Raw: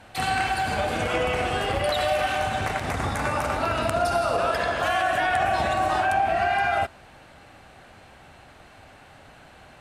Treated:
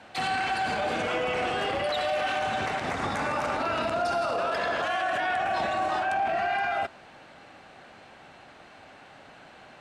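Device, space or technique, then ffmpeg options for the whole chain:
DJ mixer with the lows and highs turned down: -filter_complex "[0:a]acrossover=split=150 7600:gain=0.2 1 0.158[a][b][c];[a][b][c]amix=inputs=3:normalize=0,alimiter=limit=-20dB:level=0:latency=1:release=19"

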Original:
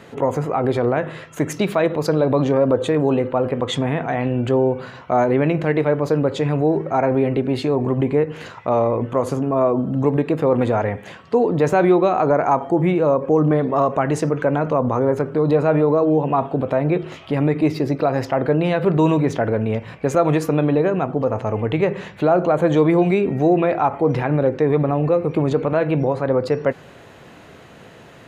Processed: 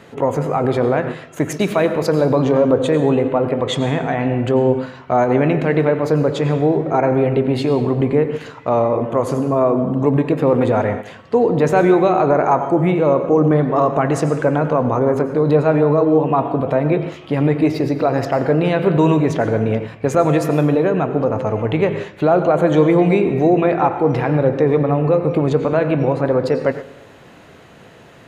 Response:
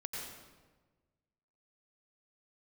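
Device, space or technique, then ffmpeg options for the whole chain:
keyed gated reverb: -filter_complex "[0:a]asplit=3[a][b][c];[1:a]atrim=start_sample=2205[d];[b][d]afir=irnorm=-1:irlink=0[e];[c]apad=whole_len=1247126[f];[e][f]sidechaingate=range=-12dB:threshold=-29dB:ratio=16:detection=peak,volume=-4.5dB[g];[a][g]amix=inputs=2:normalize=0,volume=-1dB"

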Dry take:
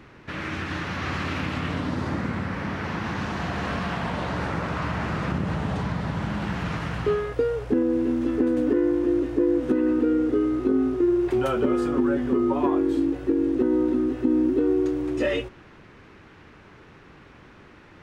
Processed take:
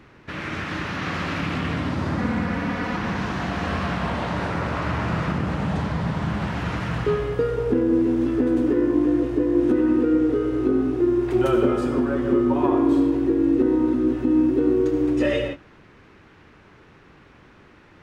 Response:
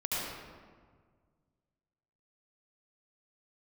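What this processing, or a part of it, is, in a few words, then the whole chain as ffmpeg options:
keyed gated reverb: -filter_complex "[0:a]asettb=1/sr,asplit=3[a][b][c];[a]atrim=end=2.184[d];[b]atrim=start=2.18:end=2.97,asetpts=PTS-STARTPTS,afade=t=in:d=0.004:c=qsin,afade=t=out:st=0.786:d=0.004:c=qsin,aecho=1:1:4.1:0.66,atrim=end_sample=34839[e];[c]atrim=start=2.966[f];[d][e]acrossfade=d=0.004:c1=hsin:c2=qsin[g];[g][f]acrossfade=d=0.004:c1=qsin:c2=hsin,asplit=3[h][i][j];[1:a]atrim=start_sample=2205[k];[i][k]afir=irnorm=-1:irlink=0[l];[j]apad=whole_len=794728[m];[l][m]sidechaingate=range=-33dB:threshold=-39dB:ratio=16:detection=peak,volume=-8dB[n];[h][n]amix=inputs=2:normalize=0,volume=-1.5dB"

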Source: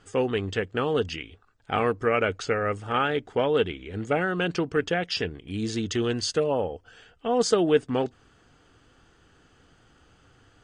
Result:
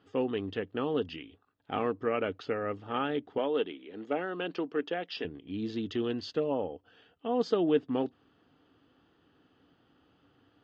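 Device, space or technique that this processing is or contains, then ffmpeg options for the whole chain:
guitar cabinet: -filter_complex "[0:a]highpass=110,equalizer=f=120:t=q:w=4:g=-3,equalizer=f=280:t=q:w=4:g=7,equalizer=f=1.5k:t=q:w=4:g=-5,equalizer=f=2.2k:t=q:w=4:g=-6,lowpass=f=4k:w=0.5412,lowpass=f=4k:w=1.3066,asettb=1/sr,asplit=3[a][b][c];[a]atrim=end=3.384[d];[b]atrim=start=3.38:end=5.25,asetpts=PTS-STARTPTS,afade=t=in:d=0.004:c=qsin,afade=t=out:st=1.866:d=0.004:c=qsin,highpass=290[e];[c]atrim=start=5.246[f];[d][e]acrossfade=d=0.004:c1=hsin:c2=qsin[g];[g][f]acrossfade=d=0.004:c1=qsin:c2=hsin,volume=-6.5dB"

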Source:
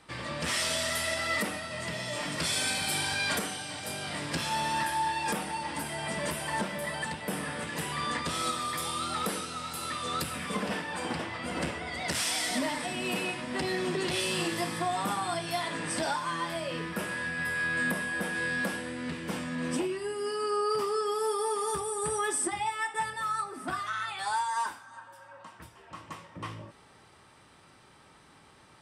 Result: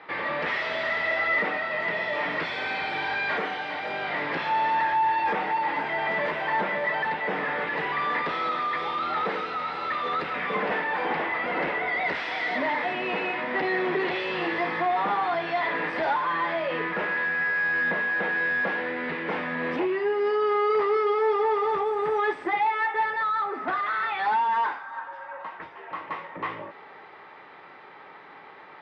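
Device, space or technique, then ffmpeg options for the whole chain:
overdrive pedal into a guitar cabinet: -filter_complex "[0:a]asplit=2[a][b];[b]highpass=f=720:p=1,volume=19dB,asoftclip=type=tanh:threshold=-18.5dB[c];[a][c]amix=inputs=2:normalize=0,lowpass=f=1.7k:p=1,volume=-6dB,highpass=110,equalizer=f=120:t=q:w=4:g=-8,equalizer=f=230:t=q:w=4:g=-4,equalizer=f=430:t=q:w=4:g=5,equalizer=f=820:t=q:w=4:g=4,equalizer=f=2k:t=q:w=4:g=6,equalizer=f=3k:t=q:w=4:g=-4,lowpass=f=3.6k:w=0.5412,lowpass=f=3.6k:w=1.3066"

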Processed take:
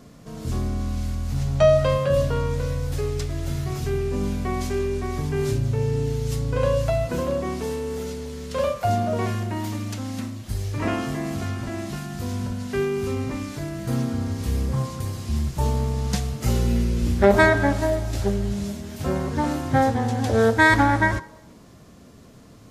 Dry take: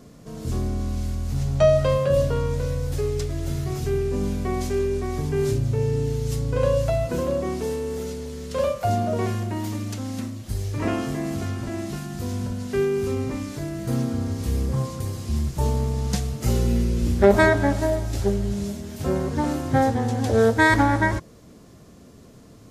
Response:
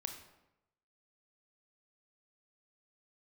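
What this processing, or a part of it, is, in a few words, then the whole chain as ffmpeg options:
filtered reverb send: -filter_complex "[0:a]asplit=2[a][b];[b]highpass=f=380:w=0.5412,highpass=f=380:w=1.3066,lowpass=5.1k[c];[1:a]atrim=start_sample=2205[d];[c][d]afir=irnorm=-1:irlink=0,volume=-7.5dB[e];[a][e]amix=inputs=2:normalize=0"

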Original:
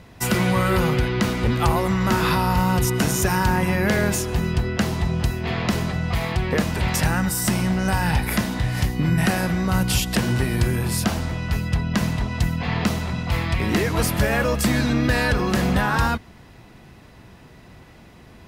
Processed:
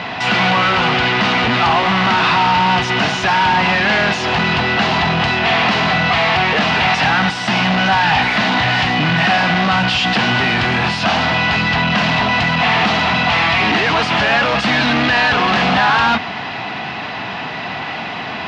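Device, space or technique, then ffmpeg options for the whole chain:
overdrive pedal into a guitar cabinet: -filter_complex "[0:a]asplit=2[a][b];[b]highpass=f=720:p=1,volume=35dB,asoftclip=type=tanh:threshold=-8dB[c];[a][c]amix=inputs=2:normalize=0,lowpass=f=5.4k:p=1,volume=-6dB,highpass=100,equalizer=f=360:t=q:w=4:g=-7,equalizer=f=520:t=q:w=4:g=-7,equalizer=f=760:t=q:w=4:g=6,equalizer=f=2.8k:t=q:w=4:g=4,lowpass=f=4.5k:w=0.5412,lowpass=f=4.5k:w=1.3066"

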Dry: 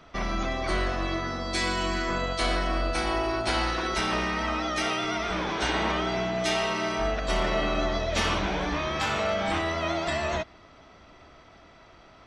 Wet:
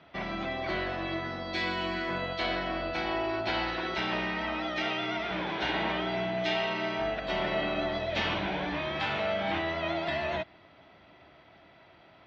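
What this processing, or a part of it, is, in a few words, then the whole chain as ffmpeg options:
guitar cabinet: -af "highpass=110,equalizer=f=240:t=q:w=4:g=-5,equalizer=f=450:t=q:w=4:g=-5,equalizer=f=1.2k:t=q:w=4:g=-8,lowpass=f=3.9k:w=0.5412,lowpass=f=3.9k:w=1.3066,volume=-1.5dB"

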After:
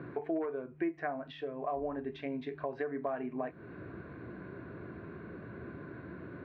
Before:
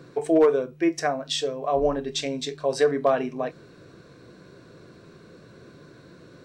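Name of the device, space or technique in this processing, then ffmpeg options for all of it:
bass amplifier: -af "acompressor=threshold=-38dB:ratio=4,highpass=62,equalizer=f=73:t=q:w=4:g=7,equalizer=f=150:t=q:w=4:g=-5,equalizer=f=500:t=q:w=4:g=-9,equalizer=f=1.2k:t=q:w=4:g=-3,lowpass=f=2.1k:w=0.5412,lowpass=f=2.1k:w=1.3066,volume=5dB"

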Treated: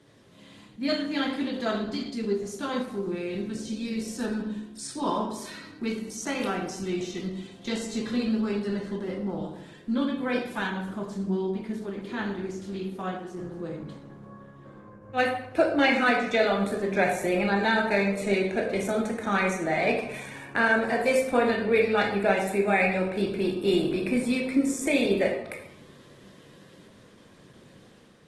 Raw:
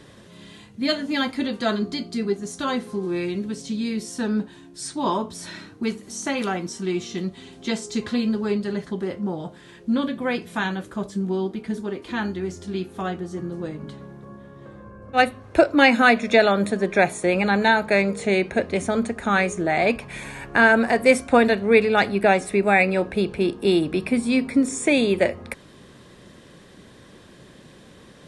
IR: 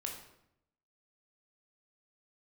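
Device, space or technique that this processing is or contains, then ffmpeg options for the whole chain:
far-field microphone of a smart speaker: -filter_complex "[1:a]atrim=start_sample=2205[a];[0:a][a]afir=irnorm=-1:irlink=0,highpass=f=86:w=0.5412,highpass=f=86:w=1.3066,dynaudnorm=f=140:g=5:m=4.5dB,volume=-7.5dB" -ar 48000 -c:a libopus -b:a 16k

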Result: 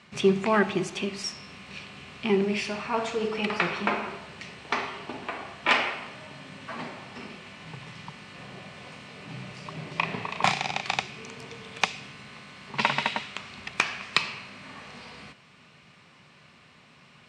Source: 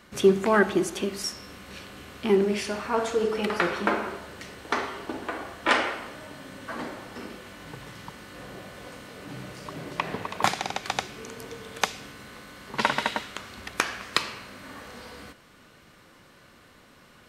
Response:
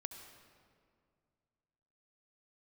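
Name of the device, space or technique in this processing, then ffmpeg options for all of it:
car door speaker: -filter_complex "[0:a]highpass=100,equalizer=f=150:t=q:w=4:g=6,equalizer=f=310:t=q:w=4:g=-9,equalizer=f=510:t=q:w=4:g=-7,equalizer=f=1.5k:t=q:w=4:g=-5,equalizer=f=2.5k:t=q:w=4:g=7,equalizer=f=6.5k:t=q:w=4:g=-4,lowpass=f=7.6k:w=0.5412,lowpass=f=7.6k:w=1.3066,asettb=1/sr,asplit=3[a][b][c];[a]atrim=end=9.924[d];[b]atrim=start=9.92:end=10.98,asetpts=PTS-STARTPTS,afade=t=in:d=0.004:c=qsin,afade=t=out:st=1.056:d=0.004:c=qsin,asplit=2[e][f];[f]adelay=35,volume=-5.5dB[g];[e][g]amix=inputs=2:normalize=0,atrim=end_sample=46746[h];[c]atrim=start=10.976[i];[d][h]acrossfade=d=0.004:c1=hsin:c2=qsin[j];[j][i]acrossfade=d=0.004:c1=qsin:c2=hsin"

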